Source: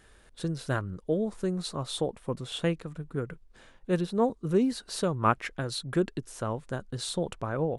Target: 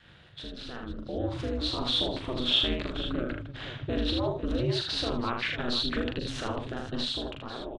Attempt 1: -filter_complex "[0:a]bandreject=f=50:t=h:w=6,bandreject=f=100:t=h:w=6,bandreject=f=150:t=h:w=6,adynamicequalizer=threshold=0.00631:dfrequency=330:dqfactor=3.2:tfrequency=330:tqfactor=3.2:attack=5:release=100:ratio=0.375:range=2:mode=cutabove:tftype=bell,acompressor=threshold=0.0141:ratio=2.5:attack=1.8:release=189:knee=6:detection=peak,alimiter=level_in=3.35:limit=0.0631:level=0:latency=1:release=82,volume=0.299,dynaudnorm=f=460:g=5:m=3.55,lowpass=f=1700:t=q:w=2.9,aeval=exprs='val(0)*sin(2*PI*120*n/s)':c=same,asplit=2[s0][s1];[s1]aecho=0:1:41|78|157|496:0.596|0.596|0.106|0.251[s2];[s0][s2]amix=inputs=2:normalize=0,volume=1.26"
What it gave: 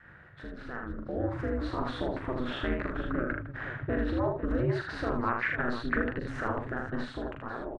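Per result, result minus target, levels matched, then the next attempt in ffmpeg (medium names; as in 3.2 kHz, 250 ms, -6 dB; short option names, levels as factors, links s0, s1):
4 kHz band -16.5 dB; compression: peak gain reduction +15 dB
-filter_complex "[0:a]bandreject=f=50:t=h:w=6,bandreject=f=100:t=h:w=6,bandreject=f=150:t=h:w=6,adynamicequalizer=threshold=0.00631:dfrequency=330:dqfactor=3.2:tfrequency=330:tqfactor=3.2:attack=5:release=100:ratio=0.375:range=2:mode=cutabove:tftype=bell,acompressor=threshold=0.0141:ratio=2.5:attack=1.8:release=189:knee=6:detection=peak,alimiter=level_in=3.35:limit=0.0631:level=0:latency=1:release=82,volume=0.299,dynaudnorm=f=460:g=5:m=3.55,lowpass=f=3400:t=q:w=2.9,aeval=exprs='val(0)*sin(2*PI*120*n/s)':c=same,asplit=2[s0][s1];[s1]aecho=0:1:41|78|157|496:0.596|0.596|0.106|0.251[s2];[s0][s2]amix=inputs=2:normalize=0,volume=1.26"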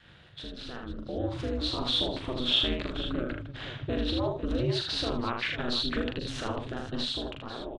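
compression: peak gain reduction +15 dB
-filter_complex "[0:a]bandreject=f=50:t=h:w=6,bandreject=f=100:t=h:w=6,bandreject=f=150:t=h:w=6,adynamicequalizer=threshold=0.00631:dfrequency=330:dqfactor=3.2:tfrequency=330:tqfactor=3.2:attack=5:release=100:ratio=0.375:range=2:mode=cutabove:tftype=bell,alimiter=level_in=3.35:limit=0.0631:level=0:latency=1:release=82,volume=0.299,dynaudnorm=f=460:g=5:m=3.55,lowpass=f=3400:t=q:w=2.9,aeval=exprs='val(0)*sin(2*PI*120*n/s)':c=same,asplit=2[s0][s1];[s1]aecho=0:1:41|78|157|496:0.596|0.596|0.106|0.251[s2];[s0][s2]amix=inputs=2:normalize=0,volume=1.26"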